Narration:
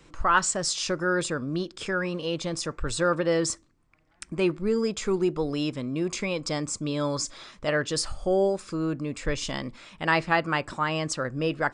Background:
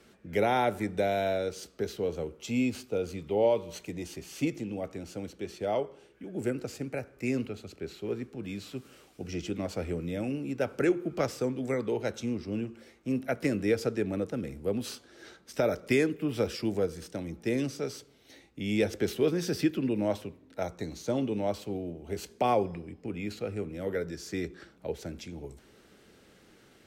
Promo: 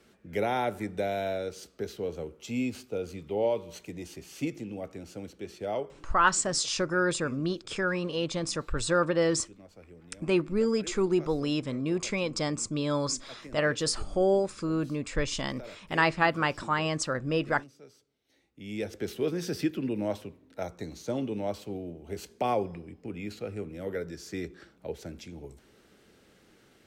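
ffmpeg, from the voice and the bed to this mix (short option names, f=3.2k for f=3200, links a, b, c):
-filter_complex "[0:a]adelay=5900,volume=-1dB[a];[1:a]volume=14dB,afade=t=out:st=5.9:d=0.32:silence=0.158489,afade=t=in:st=18.25:d=1.17:silence=0.149624[b];[a][b]amix=inputs=2:normalize=0"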